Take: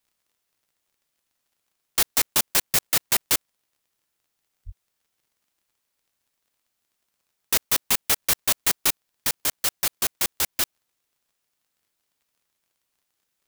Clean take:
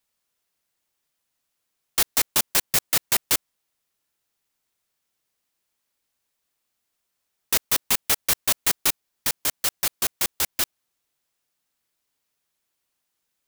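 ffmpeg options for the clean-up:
-filter_complex "[0:a]adeclick=t=4,asplit=3[a][b][c];[a]afade=t=out:st=4.65:d=0.02[d];[b]highpass=f=140:w=0.5412,highpass=f=140:w=1.3066,afade=t=in:st=4.65:d=0.02,afade=t=out:st=4.77:d=0.02[e];[c]afade=t=in:st=4.77:d=0.02[f];[d][e][f]amix=inputs=3:normalize=0"

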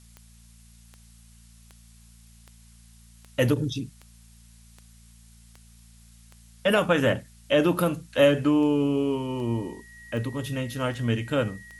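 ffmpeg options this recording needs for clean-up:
-af "adeclick=t=4,bandreject=f=57:t=h:w=4,bandreject=f=114:t=h:w=4,bandreject=f=171:t=h:w=4,bandreject=f=228:t=h:w=4,bandreject=f=1.9k:w=30,agate=range=-21dB:threshold=-44dB"

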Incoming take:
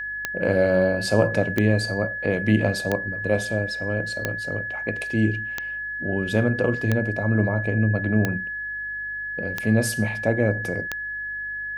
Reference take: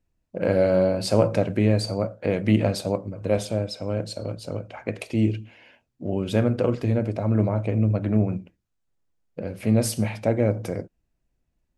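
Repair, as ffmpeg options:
-af "adeclick=t=4,bandreject=f=50.4:t=h:w=4,bandreject=f=100.8:t=h:w=4,bandreject=f=151.2:t=h:w=4,bandreject=f=201.6:t=h:w=4,bandreject=f=252:t=h:w=4,bandreject=f=1.7k:w=30"

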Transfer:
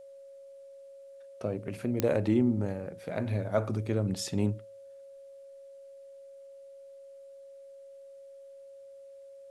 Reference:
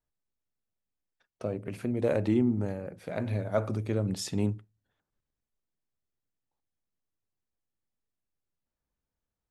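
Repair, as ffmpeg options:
-af "adeclick=t=4,bandreject=f=550:w=30,agate=range=-21dB:threshold=-42dB"

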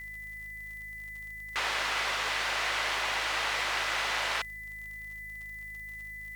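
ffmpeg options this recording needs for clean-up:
-af "adeclick=t=4,bandreject=f=52.6:t=h:w=4,bandreject=f=105.2:t=h:w=4,bandreject=f=157.8:t=h:w=4,bandreject=f=210.4:t=h:w=4,bandreject=f=2k:w=30,afftdn=nr=30:nf=-42"

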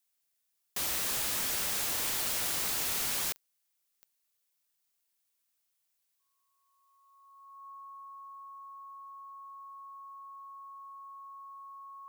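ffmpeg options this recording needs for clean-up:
-af "adeclick=t=4,bandreject=f=1.1k:w=30,agate=range=-21dB:threshold=-71dB"

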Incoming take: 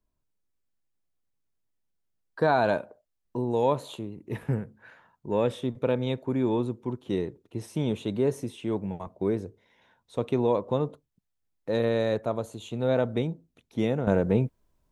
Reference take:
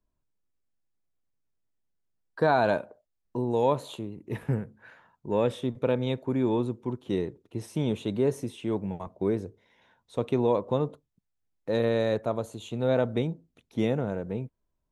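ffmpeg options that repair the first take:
-af "asetnsamples=n=441:p=0,asendcmd='14.07 volume volume -9.5dB',volume=0dB"

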